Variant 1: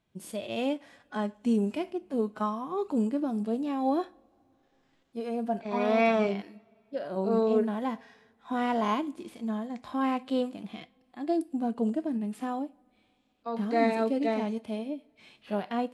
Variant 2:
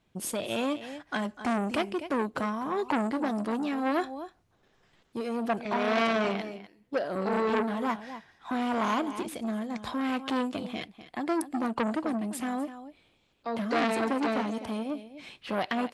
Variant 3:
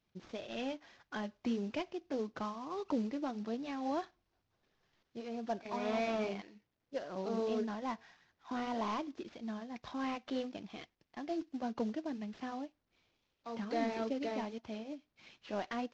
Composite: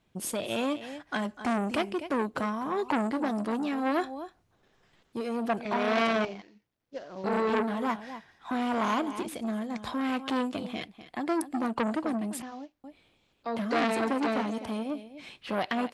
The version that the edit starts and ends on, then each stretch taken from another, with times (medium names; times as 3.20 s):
2
6.25–7.24 s: from 3
12.42–12.84 s: from 3
not used: 1